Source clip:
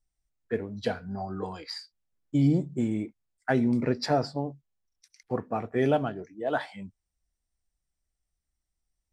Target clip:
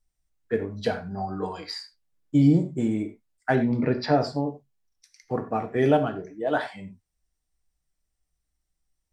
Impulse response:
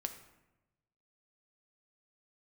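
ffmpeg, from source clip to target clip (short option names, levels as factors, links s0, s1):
-filter_complex "[0:a]asettb=1/sr,asplit=3[s0][s1][s2];[s0]atrim=end=3.554[s3];[s1]atrim=start=3.55:end=4.21,asetpts=PTS-STARTPTS,afade=t=in:d=0.004:c=qsin,afade=t=out:st=0.656:d=0.004:c=qsin,lowpass=f=4400:w=0.5412,lowpass=f=4400:w=1.3066[s4];[s2]atrim=start=4.206[s5];[s3][s4]acrossfade=d=0.004:c1=hsin:c2=qsin[s6];[s6][s5]acrossfade=d=0.004:c1=qsin:c2=hsin[s7];[1:a]atrim=start_sample=2205,atrim=end_sample=3969,asetrate=38367,aresample=44100[s8];[s7][s8]afir=irnorm=-1:irlink=0,volume=1.5"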